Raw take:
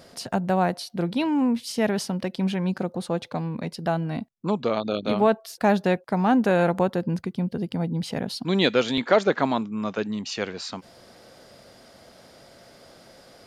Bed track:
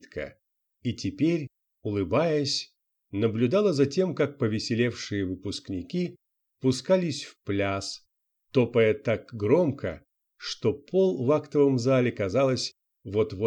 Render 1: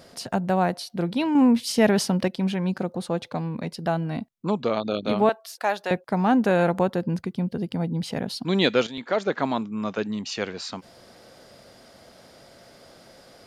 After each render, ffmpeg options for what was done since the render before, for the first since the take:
-filter_complex "[0:a]asettb=1/sr,asplit=3[s0][s1][s2];[s0]atrim=end=1.354[s3];[s1]atrim=start=1.35:end=2.28,asetpts=PTS-STARTPTS,afade=t=in:d=0.004:c=qsin,afade=t=out:st=0.926:d=0.004:c=qsin,acontrast=23[s4];[s2]atrim=start=2.276[s5];[s3][s4]acrossfade=d=0.004:c1=hsin:c2=qsin[s6];[s6][s5]acrossfade=d=0.004:c1=qsin:c2=hsin,asettb=1/sr,asplit=3[s7][s8][s9];[s7]atrim=end=5.294[s10];[s8]atrim=start=5.29:end=5.91,asetpts=PTS-STARTPTS,afade=t=in:d=0.004:c=qsin,afade=t=out:st=0.616:d=0.004:c=qsin,highpass=660[s11];[s9]atrim=start=5.906[s12];[s10][s11]acrossfade=d=0.004:c1=hsin:c2=qsin[s13];[s13][s12]acrossfade=d=0.004:c1=qsin:c2=hsin,asplit=2[s14][s15];[s14]atrim=end=8.87,asetpts=PTS-STARTPTS,afade=t=out:st=8.866:d=0.004:c=hsin:silence=0.223872[s16];[s15]atrim=start=8.87,asetpts=PTS-STARTPTS,afade=t=in:d=1.12:c=qsin:silence=0.223872[s17];[s16][s17]concat=n=2:v=0:a=1"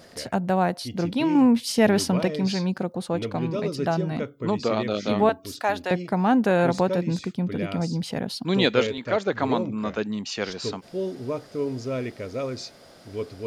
-filter_complex "[1:a]volume=0.473[s0];[0:a][s0]amix=inputs=2:normalize=0"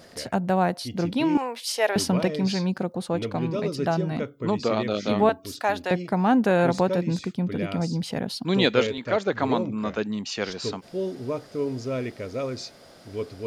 -filter_complex "[0:a]asettb=1/sr,asplit=3[s0][s1][s2];[s0]atrim=end=1.374[s3];[s1]atrim=start=1.37:end=1.96,asetpts=PTS-STARTPTS,afade=t=in:d=0.004:c=qsin,afade=t=out:st=0.586:d=0.004:c=qsin,highpass=f=510:w=0.5412,highpass=f=510:w=1.3066[s4];[s2]atrim=start=1.956[s5];[s3][s4]acrossfade=d=0.004:c1=hsin:c2=qsin[s6];[s6][s5]acrossfade=d=0.004:c1=qsin:c2=hsin"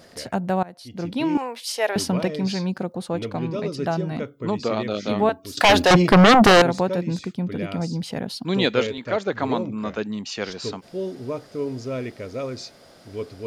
-filter_complex "[0:a]asettb=1/sr,asplit=3[s0][s1][s2];[s0]atrim=end=3.394[s3];[s1]atrim=start=3.39:end=3.79,asetpts=PTS-STARTPTS,afade=t=in:d=0.004:c=qsin,afade=t=out:st=0.396:d=0.004:c=qsin,lowpass=9900[s4];[s2]atrim=start=3.786[s5];[s3][s4]acrossfade=d=0.004:c1=hsin:c2=qsin[s6];[s6][s5]acrossfade=d=0.004:c1=qsin:c2=hsin,asettb=1/sr,asplit=3[s7][s8][s9];[s7]atrim=end=5.574[s10];[s8]atrim=start=5.57:end=6.62,asetpts=PTS-STARTPTS,afade=t=in:d=0.004:c=qsin,afade=t=out:st=1.046:d=0.004:c=qsin,aeval=exprs='0.376*sin(PI/2*4.47*val(0)/0.376)':c=same[s11];[s9]atrim=start=6.616[s12];[s10][s11]acrossfade=d=0.004:c1=hsin:c2=qsin[s13];[s13][s12]acrossfade=d=0.004:c1=qsin:c2=hsin,asplit=2[s14][s15];[s14]atrim=end=0.63,asetpts=PTS-STARTPTS,afade=t=out:st=0.626:d=0.004:c=hsin:silence=0.0707946[s16];[s15]atrim=start=0.63,asetpts=PTS-STARTPTS,afade=t=in:d=0.61:silence=0.0707946[s17];[s16][s17]concat=n=2:v=0:a=1"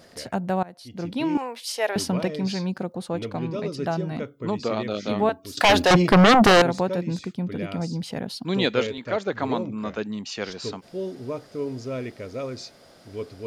-af "volume=0.794"

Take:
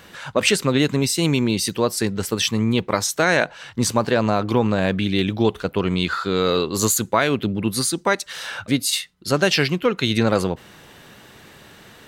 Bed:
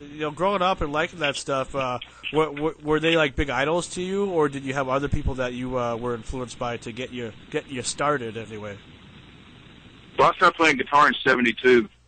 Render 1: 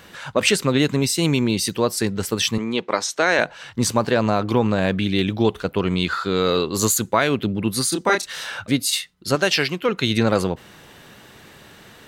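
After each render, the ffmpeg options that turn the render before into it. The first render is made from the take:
-filter_complex "[0:a]asettb=1/sr,asplit=3[s0][s1][s2];[s0]atrim=end=2.584[s3];[s1]atrim=start=2.58:end=3.39,asetpts=PTS-STARTPTS,afade=t=in:d=0.004:c=qsin,afade=t=out:st=0.806:d=0.004:c=qsin,highpass=290,lowpass=6700[s4];[s2]atrim=start=3.386[s5];[s3][s4]acrossfade=d=0.004:c1=hsin:c2=qsin[s6];[s6][s5]acrossfade=d=0.004:c1=qsin:c2=hsin,asettb=1/sr,asplit=3[s7][s8][s9];[s7]atrim=end=7.894[s10];[s8]atrim=start=7.89:end=8.44,asetpts=PTS-STARTPTS,afade=t=in:d=0.004:c=qsin,afade=t=out:st=0.546:d=0.004:c=qsin,asplit=2[s11][s12];[s12]adelay=28,volume=0.668[s13];[s11][s13]amix=inputs=2:normalize=0,atrim=end_sample=24255[s14];[s9]atrim=start=8.436[s15];[s10][s14]acrossfade=d=0.004:c1=hsin:c2=qsin[s16];[s16][s15]acrossfade=d=0.004:c1=qsin:c2=hsin,asettb=1/sr,asplit=3[s17][s18][s19];[s17]atrim=end=9.354[s20];[s18]atrim=start=9.35:end=9.89,asetpts=PTS-STARTPTS,afade=t=in:d=0.004:c=qsin,afade=t=out:st=0.536:d=0.004:c=qsin,lowshelf=f=230:g=-9.5[s21];[s19]atrim=start=9.886[s22];[s20][s21]acrossfade=d=0.004:c1=hsin:c2=qsin[s23];[s23][s22]acrossfade=d=0.004:c1=qsin:c2=hsin"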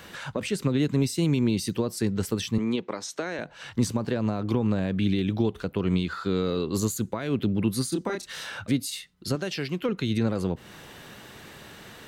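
-filter_complex "[0:a]alimiter=limit=0.282:level=0:latency=1:release=213,acrossover=split=380[s0][s1];[s1]acompressor=threshold=0.0141:ratio=2.5[s2];[s0][s2]amix=inputs=2:normalize=0"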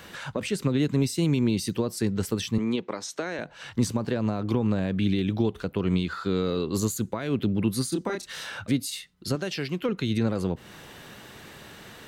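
-af anull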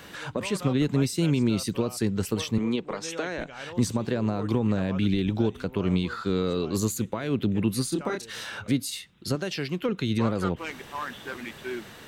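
-filter_complex "[1:a]volume=0.126[s0];[0:a][s0]amix=inputs=2:normalize=0"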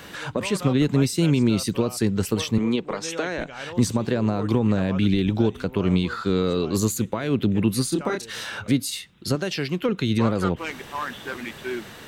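-af "volume=1.58"

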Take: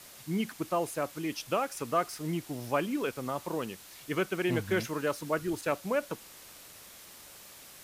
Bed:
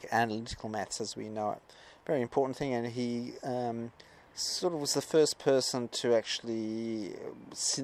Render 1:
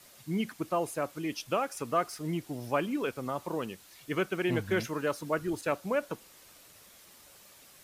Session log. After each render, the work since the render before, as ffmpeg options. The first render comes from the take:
-af "afftdn=nr=6:nf=-51"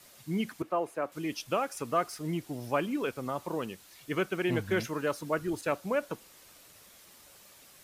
-filter_complex "[0:a]asettb=1/sr,asplit=3[s0][s1][s2];[s0]atrim=end=0.624[s3];[s1]atrim=start=0.62:end=1.12,asetpts=PTS-STARTPTS,afade=t=in:d=0.004:c=qsin,afade=t=out:st=0.496:d=0.004:c=qsin,acrossover=split=230 2600:gain=0.251 1 0.224[s4][s5][s6];[s4][s5][s6]amix=inputs=3:normalize=0[s7];[s2]atrim=start=1.116[s8];[s3][s7]acrossfade=d=0.004:c1=hsin:c2=qsin[s9];[s9][s8]acrossfade=d=0.004:c1=qsin:c2=hsin"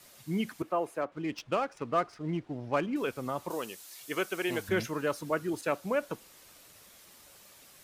-filter_complex "[0:a]asettb=1/sr,asplit=3[s0][s1][s2];[s0]atrim=end=1.014[s3];[s1]atrim=start=1.01:end=2.96,asetpts=PTS-STARTPTS,afade=t=in:d=0.004:c=qsin,afade=t=out:st=1.946:d=0.004:c=qsin,adynamicsmooth=sensitivity=8:basefreq=2000[s4];[s2]atrim=start=2.956[s5];[s3][s4]acrossfade=d=0.004:c1=hsin:c2=qsin[s6];[s6][s5]acrossfade=d=0.004:c1=qsin:c2=hsin,asettb=1/sr,asplit=3[s7][s8][s9];[s7]atrim=end=3.504[s10];[s8]atrim=start=3.5:end=4.69,asetpts=PTS-STARTPTS,afade=t=in:d=0.004:c=qsin,afade=t=out:st=1.186:d=0.004:c=qsin,bass=f=250:g=-12,treble=f=4000:g=8[s11];[s9]atrim=start=4.686[s12];[s10][s11]acrossfade=d=0.004:c1=hsin:c2=qsin[s13];[s13][s12]acrossfade=d=0.004:c1=qsin:c2=hsin,asettb=1/sr,asplit=3[s14][s15][s16];[s14]atrim=end=5.304[s17];[s15]atrim=start=5.3:end=5.8,asetpts=PTS-STARTPTS,afade=t=in:d=0.004:c=qsin,afade=t=out:st=0.496:d=0.004:c=qsin,highpass=130[s18];[s16]atrim=start=5.796[s19];[s17][s18]acrossfade=d=0.004:c1=hsin:c2=qsin[s20];[s20][s19]acrossfade=d=0.004:c1=qsin:c2=hsin"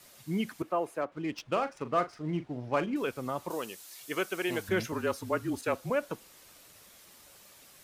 -filter_complex "[0:a]asettb=1/sr,asplit=3[s0][s1][s2];[s0]atrim=end=1.514[s3];[s1]atrim=start=1.51:end=2.94,asetpts=PTS-STARTPTS,afade=t=in:d=0.004:c=qsin,afade=t=out:st=1.426:d=0.004:c=qsin,asplit=2[s4][s5];[s5]adelay=40,volume=0.266[s6];[s4][s6]amix=inputs=2:normalize=0,atrim=end_sample=63063[s7];[s2]atrim=start=2.936[s8];[s3][s7]acrossfade=d=0.004:c1=hsin:c2=qsin[s9];[s9][s8]acrossfade=d=0.004:c1=qsin:c2=hsin,asettb=1/sr,asplit=3[s10][s11][s12];[s10]atrim=end=4.924[s13];[s11]atrim=start=4.92:end=5.9,asetpts=PTS-STARTPTS,afade=t=in:d=0.004:c=qsin,afade=t=out:st=0.976:d=0.004:c=qsin,afreqshift=-36[s14];[s12]atrim=start=5.896[s15];[s13][s14]acrossfade=d=0.004:c1=hsin:c2=qsin[s16];[s16][s15]acrossfade=d=0.004:c1=qsin:c2=hsin"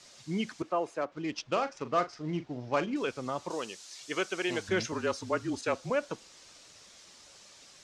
-af "lowpass=f=6500:w=0.5412,lowpass=f=6500:w=1.3066,bass=f=250:g=-2,treble=f=4000:g=9"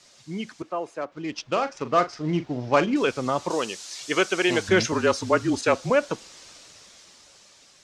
-af "dynaudnorm=f=380:g=9:m=3.16"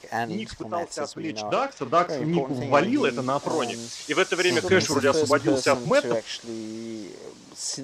-filter_complex "[1:a]volume=1.06[s0];[0:a][s0]amix=inputs=2:normalize=0"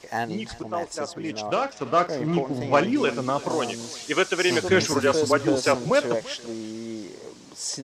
-af "aecho=1:1:340:0.106"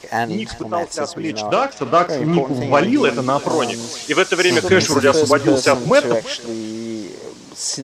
-af "volume=2.37,alimiter=limit=0.794:level=0:latency=1"

